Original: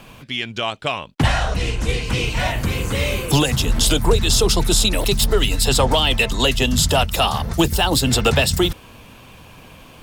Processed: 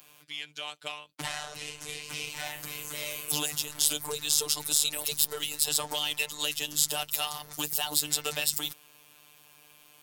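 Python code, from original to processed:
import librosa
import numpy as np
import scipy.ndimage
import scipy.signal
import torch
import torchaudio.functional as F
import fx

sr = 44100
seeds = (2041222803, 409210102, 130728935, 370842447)

y = fx.cheby_harmonics(x, sr, harmonics=(4,), levels_db=(-24,), full_scale_db=-5.5)
y = fx.robotise(y, sr, hz=149.0)
y = fx.riaa(y, sr, side='recording')
y = F.gain(torch.from_numpy(y), -14.5).numpy()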